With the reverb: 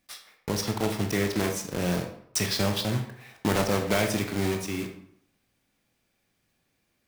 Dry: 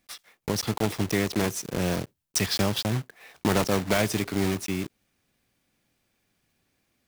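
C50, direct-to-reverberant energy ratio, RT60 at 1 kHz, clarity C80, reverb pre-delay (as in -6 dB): 7.5 dB, 4.0 dB, 0.70 s, 10.5 dB, 18 ms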